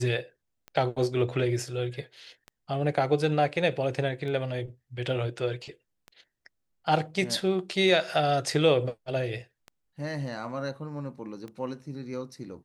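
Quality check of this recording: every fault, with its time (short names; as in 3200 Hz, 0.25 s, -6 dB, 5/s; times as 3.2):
tick 33 1/3 rpm -27 dBFS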